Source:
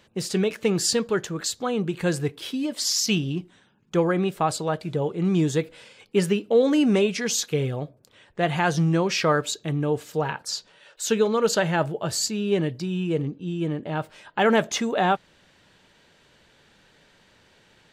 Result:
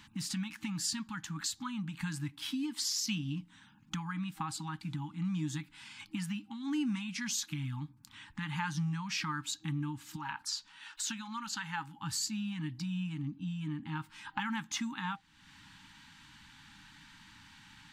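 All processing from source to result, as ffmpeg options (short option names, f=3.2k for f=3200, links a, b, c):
-filter_complex "[0:a]asettb=1/sr,asplit=3[a][b][c];[a]atrim=end=10.164[d];[b]atrim=start=10.16:end=11.99,asetpts=PTS-STARTPTS,afade=t=in:d=0.004:c=qsin,afade=t=out:st=1.826:d=0.004:c=qsin,acrossover=split=8300[e][f];[f]acompressor=threshold=-44dB:ratio=4:attack=1:release=60[g];[e][g]amix=inputs=2:normalize=0,equalizer=f=150:t=o:w=1.2:g=-9.5[h];[c]atrim=start=11.986[i];[d][h]acrossfade=d=0.004:c1=hsin:c2=qsin[j];[j][i]acrossfade=d=0.004:c1=qsin:c2=hsin,acompressor=threshold=-41dB:ratio=2.5,afftfilt=real='re*(1-between(b*sr/4096,320,790))':imag='im*(1-between(b*sr/4096,320,790))':win_size=4096:overlap=0.75,volume=2.5dB"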